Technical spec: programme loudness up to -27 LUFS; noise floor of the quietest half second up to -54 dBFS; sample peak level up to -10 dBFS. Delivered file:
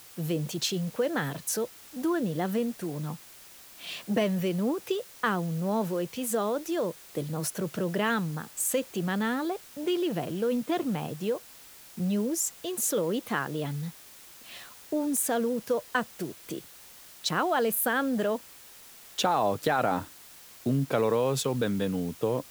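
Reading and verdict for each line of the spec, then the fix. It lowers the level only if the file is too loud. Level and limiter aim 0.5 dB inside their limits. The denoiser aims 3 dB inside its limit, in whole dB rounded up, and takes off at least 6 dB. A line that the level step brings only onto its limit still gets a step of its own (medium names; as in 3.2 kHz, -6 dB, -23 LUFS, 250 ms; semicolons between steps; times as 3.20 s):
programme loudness -29.5 LUFS: pass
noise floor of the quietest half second -50 dBFS: fail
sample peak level -13.0 dBFS: pass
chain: noise reduction 7 dB, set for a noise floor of -50 dBFS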